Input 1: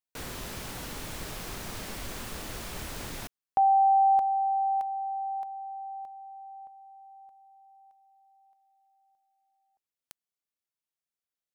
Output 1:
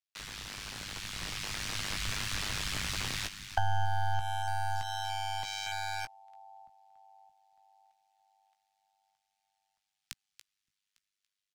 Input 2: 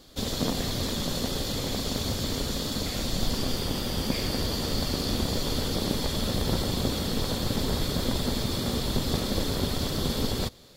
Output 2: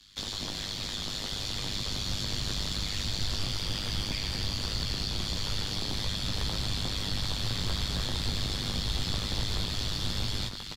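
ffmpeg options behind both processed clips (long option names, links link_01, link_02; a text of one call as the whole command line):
ffmpeg -i in.wav -filter_complex "[0:a]aecho=1:1:284|568|852|1136:0.224|0.094|0.0395|0.0166,acrossover=split=230|1100[link_01][link_02][link_03];[link_01]asoftclip=type=tanh:threshold=-27.5dB[link_04];[link_02]acrusher=bits=4:dc=4:mix=0:aa=0.000001[link_05];[link_04][link_05][link_03]amix=inputs=3:normalize=0,tremolo=f=100:d=0.974,equalizer=frequency=4100:width=0.34:gain=10,asplit=2[link_06][link_07];[link_07]adelay=17,volume=-8.5dB[link_08];[link_06][link_08]amix=inputs=2:normalize=0,dynaudnorm=framelen=260:gausssize=13:maxgain=11.5dB,highshelf=frequency=10000:gain=-11,acrossover=split=140[link_09][link_10];[link_10]acompressor=threshold=-30dB:ratio=6:attack=33:release=225:knee=2.83:detection=peak[link_11];[link_09][link_11]amix=inputs=2:normalize=0,volume=-4.5dB" out.wav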